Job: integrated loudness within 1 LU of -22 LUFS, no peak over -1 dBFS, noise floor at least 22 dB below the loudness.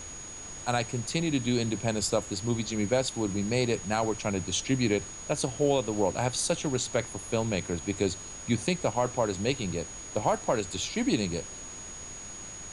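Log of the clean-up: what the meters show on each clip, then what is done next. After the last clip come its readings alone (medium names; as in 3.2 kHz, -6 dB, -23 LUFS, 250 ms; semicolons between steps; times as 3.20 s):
steady tone 6.7 kHz; tone level -41 dBFS; noise floor -42 dBFS; noise floor target -52 dBFS; loudness -29.5 LUFS; peak level -12.0 dBFS; loudness target -22.0 LUFS
-> band-stop 6.7 kHz, Q 30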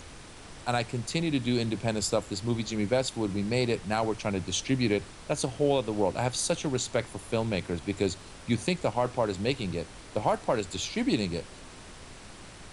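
steady tone not found; noise floor -47 dBFS; noise floor target -52 dBFS
-> noise print and reduce 6 dB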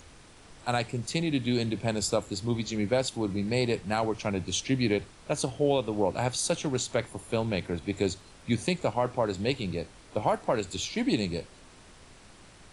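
noise floor -53 dBFS; loudness -29.5 LUFS; peak level -12.0 dBFS; loudness target -22.0 LUFS
-> trim +7.5 dB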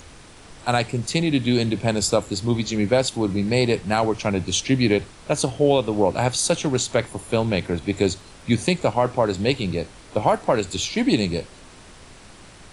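loudness -22.0 LUFS; peak level -4.5 dBFS; noise floor -46 dBFS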